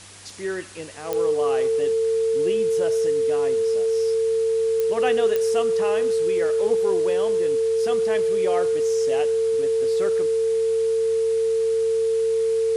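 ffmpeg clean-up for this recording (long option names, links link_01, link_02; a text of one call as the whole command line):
ffmpeg -i in.wav -af "adeclick=threshold=4,bandreject=frequency=98.4:width_type=h:width=4,bandreject=frequency=196.8:width_type=h:width=4,bandreject=frequency=295.2:width_type=h:width=4,bandreject=frequency=393.6:width_type=h:width=4,bandreject=frequency=450:width=30,afwtdn=0.0079" out.wav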